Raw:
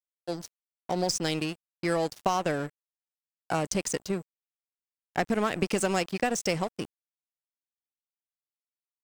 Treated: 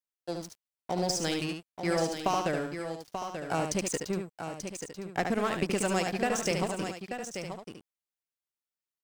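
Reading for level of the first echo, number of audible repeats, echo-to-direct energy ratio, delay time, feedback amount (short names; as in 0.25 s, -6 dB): -5.5 dB, 3, -3.0 dB, 73 ms, no steady repeat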